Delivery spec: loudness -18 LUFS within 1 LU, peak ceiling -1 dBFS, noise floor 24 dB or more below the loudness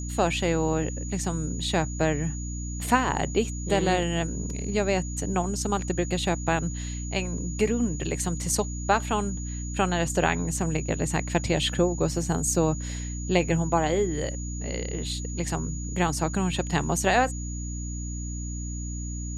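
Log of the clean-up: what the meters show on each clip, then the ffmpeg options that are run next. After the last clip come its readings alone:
hum 60 Hz; highest harmonic 300 Hz; hum level -31 dBFS; steady tone 6.8 kHz; tone level -39 dBFS; loudness -27.0 LUFS; peak level -6.5 dBFS; loudness target -18.0 LUFS
-> -af "bandreject=f=60:t=h:w=4,bandreject=f=120:t=h:w=4,bandreject=f=180:t=h:w=4,bandreject=f=240:t=h:w=4,bandreject=f=300:t=h:w=4"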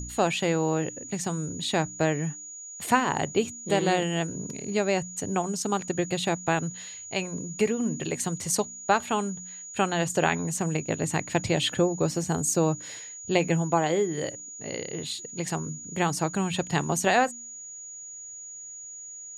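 hum not found; steady tone 6.8 kHz; tone level -39 dBFS
-> -af "bandreject=f=6800:w=30"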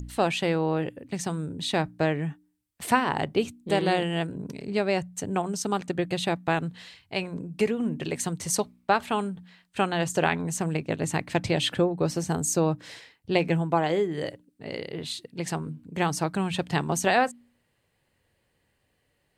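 steady tone not found; loudness -27.5 LUFS; peak level -6.5 dBFS; loudness target -18.0 LUFS
-> -af "volume=2.99,alimiter=limit=0.891:level=0:latency=1"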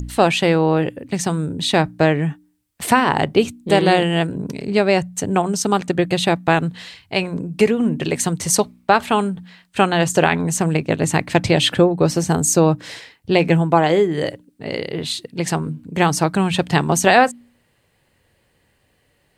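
loudness -18.5 LUFS; peak level -1.0 dBFS; noise floor -63 dBFS

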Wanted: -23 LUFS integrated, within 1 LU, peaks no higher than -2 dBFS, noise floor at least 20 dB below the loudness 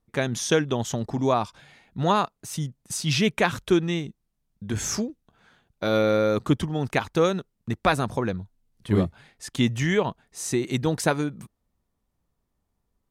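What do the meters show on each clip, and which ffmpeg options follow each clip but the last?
loudness -25.5 LUFS; peak level -7.5 dBFS; loudness target -23.0 LUFS
-> -af "volume=1.33"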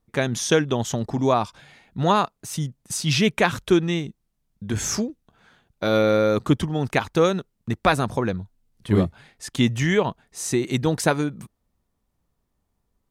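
loudness -23.0 LUFS; peak level -5.0 dBFS; noise floor -75 dBFS

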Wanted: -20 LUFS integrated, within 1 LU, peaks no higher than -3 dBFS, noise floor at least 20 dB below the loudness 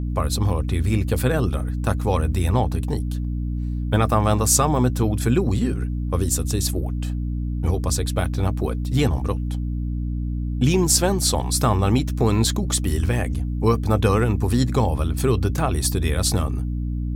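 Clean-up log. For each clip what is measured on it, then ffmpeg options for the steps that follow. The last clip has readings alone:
hum 60 Hz; highest harmonic 300 Hz; hum level -22 dBFS; loudness -22.0 LUFS; peak level -3.5 dBFS; loudness target -20.0 LUFS
-> -af "bandreject=f=60:t=h:w=4,bandreject=f=120:t=h:w=4,bandreject=f=180:t=h:w=4,bandreject=f=240:t=h:w=4,bandreject=f=300:t=h:w=4"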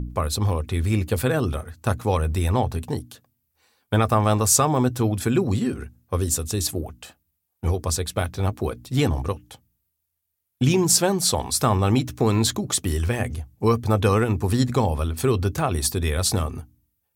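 hum not found; loudness -22.5 LUFS; peak level -4.0 dBFS; loudness target -20.0 LUFS
-> -af "volume=1.33,alimiter=limit=0.708:level=0:latency=1"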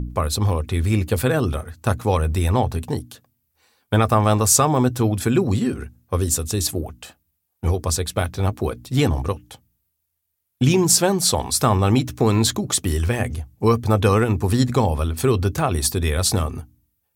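loudness -20.5 LUFS; peak level -3.0 dBFS; noise floor -74 dBFS

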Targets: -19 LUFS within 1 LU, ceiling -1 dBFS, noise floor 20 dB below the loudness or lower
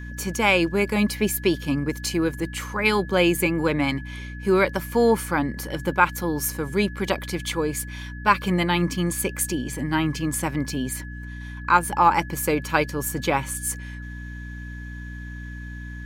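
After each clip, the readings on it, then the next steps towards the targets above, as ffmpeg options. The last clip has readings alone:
hum 60 Hz; highest harmonic 300 Hz; hum level -33 dBFS; steady tone 1.7 kHz; tone level -41 dBFS; loudness -23.5 LUFS; peak level -3.0 dBFS; loudness target -19.0 LUFS
-> -af "bandreject=f=60:t=h:w=4,bandreject=f=120:t=h:w=4,bandreject=f=180:t=h:w=4,bandreject=f=240:t=h:w=4,bandreject=f=300:t=h:w=4"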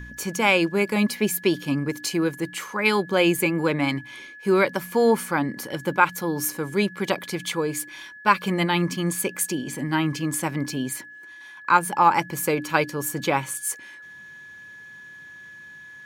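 hum not found; steady tone 1.7 kHz; tone level -41 dBFS
-> -af "bandreject=f=1700:w=30"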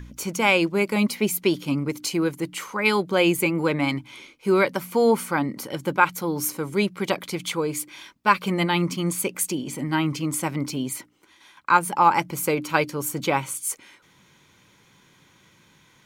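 steady tone not found; loudness -23.5 LUFS; peak level -3.5 dBFS; loudness target -19.0 LUFS
-> -af "volume=1.68,alimiter=limit=0.891:level=0:latency=1"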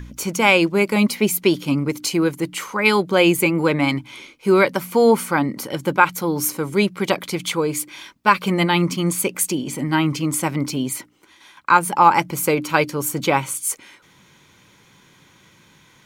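loudness -19.0 LUFS; peak level -1.0 dBFS; noise floor -53 dBFS

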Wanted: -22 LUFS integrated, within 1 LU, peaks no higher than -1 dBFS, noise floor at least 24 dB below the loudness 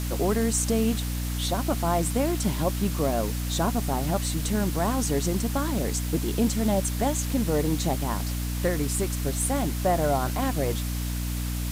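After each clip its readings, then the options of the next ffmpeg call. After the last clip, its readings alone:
hum 60 Hz; highest harmonic 300 Hz; hum level -27 dBFS; noise floor -29 dBFS; noise floor target -51 dBFS; loudness -26.5 LUFS; peak level -11.0 dBFS; loudness target -22.0 LUFS
-> -af "bandreject=f=60:t=h:w=4,bandreject=f=120:t=h:w=4,bandreject=f=180:t=h:w=4,bandreject=f=240:t=h:w=4,bandreject=f=300:t=h:w=4"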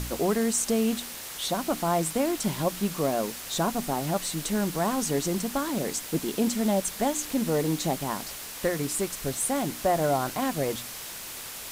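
hum not found; noise floor -39 dBFS; noise floor target -52 dBFS
-> -af "afftdn=nr=13:nf=-39"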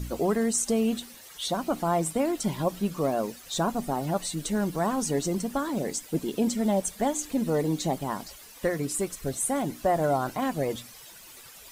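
noise floor -48 dBFS; noise floor target -52 dBFS
-> -af "afftdn=nr=6:nf=-48"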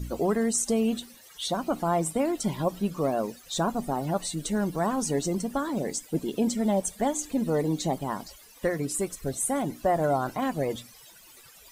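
noise floor -52 dBFS; loudness -28.0 LUFS; peak level -13.5 dBFS; loudness target -22.0 LUFS
-> -af "volume=2"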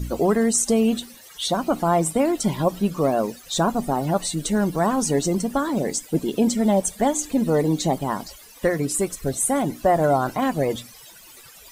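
loudness -22.0 LUFS; peak level -7.5 dBFS; noise floor -46 dBFS

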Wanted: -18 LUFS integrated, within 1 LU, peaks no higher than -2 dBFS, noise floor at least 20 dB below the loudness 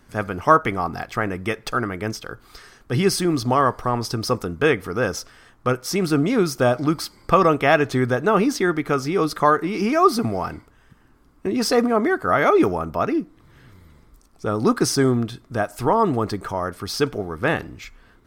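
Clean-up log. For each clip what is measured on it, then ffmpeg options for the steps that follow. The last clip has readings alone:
loudness -21.0 LUFS; peak level -1.0 dBFS; loudness target -18.0 LUFS
-> -af "volume=1.41,alimiter=limit=0.794:level=0:latency=1"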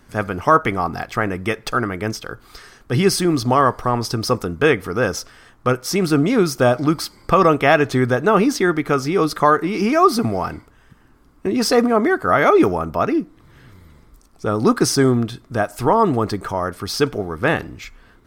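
loudness -18.5 LUFS; peak level -2.0 dBFS; noise floor -52 dBFS

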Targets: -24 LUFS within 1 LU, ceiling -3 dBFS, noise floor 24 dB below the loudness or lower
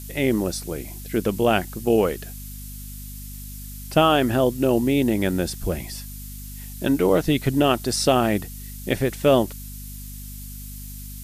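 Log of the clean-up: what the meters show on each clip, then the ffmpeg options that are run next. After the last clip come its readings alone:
hum 50 Hz; highest harmonic 250 Hz; hum level -35 dBFS; noise floor -36 dBFS; noise floor target -46 dBFS; loudness -22.0 LUFS; peak level -5.5 dBFS; loudness target -24.0 LUFS
-> -af "bandreject=f=50:t=h:w=6,bandreject=f=100:t=h:w=6,bandreject=f=150:t=h:w=6,bandreject=f=200:t=h:w=6,bandreject=f=250:t=h:w=6"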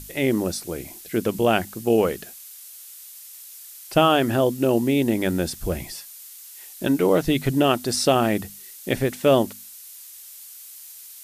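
hum not found; noise floor -43 dBFS; noise floor target -46 dBFS
-> -af "afftdn=nr=6:nf=-43"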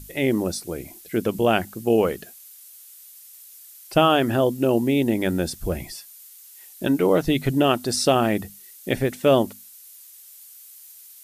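noise floor -47 dBFS; loudness -22.0 LUFS; peak level -5.0 dBFS; loudness target -24.0 LUFS
-> -af "volume=0.794"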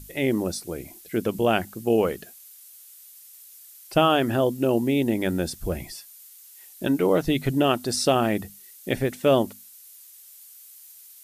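loudness -24.0 LUFS; peak level -7.0 dBFS; noise floor -49 dBFS

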